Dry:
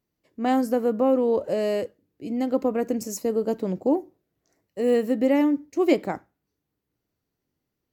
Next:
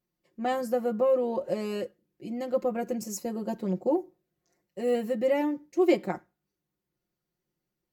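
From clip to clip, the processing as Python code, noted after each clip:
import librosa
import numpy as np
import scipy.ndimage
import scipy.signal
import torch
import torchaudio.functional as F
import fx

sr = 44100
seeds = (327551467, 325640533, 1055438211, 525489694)

y = x + 0.96 * np.pad(x, (int(5.6 * sr / 1000.0), 0))[:len(x)]
y = y * 10.0 ** (-6.5 / 20.0)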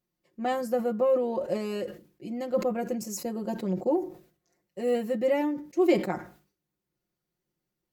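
y = fx.sustainer(x, sr, db_per_s=130.0)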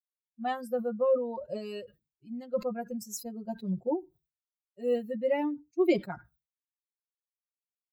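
y = fx.bin_expand(x, sr, power=2.0)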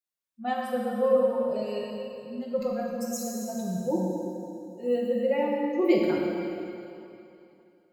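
y = fx.rev_plate(x, sr, seeds[0], rt60_s=2.8, hf_ratio=0.95, predelay_ms=0, drr_db=-3.0)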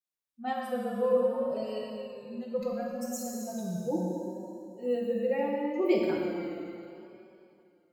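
y = fx.vibrato(x, sr, rate_hz=0.71, depth_cents=59.0)
y = y * 10.0 ** (-3.5 / 20.0)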